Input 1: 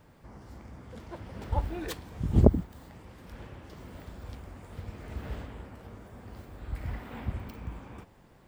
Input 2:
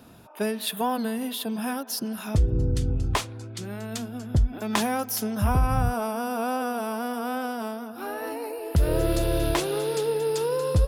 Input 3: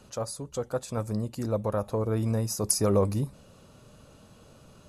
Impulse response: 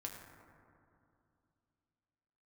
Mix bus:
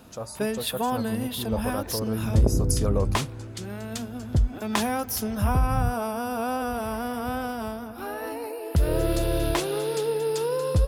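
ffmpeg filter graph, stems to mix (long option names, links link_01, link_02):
-filter_complex "[0:a]volume=-8dB,asplit=2[link_01][link_02];[link_02]volume=-4dB[link_03];[1:a]volume=-0.5dB[link_04];[2:a]acontrast=89,volume=-10dB[link_05];[3:a]atrim=start_sample=2205[link_06];[link_03][link_06]afir=irnorm=-1:irlink=0[link_07];[link_01][link_04][link_05][link_07]amix=inputs=4:normalize=0"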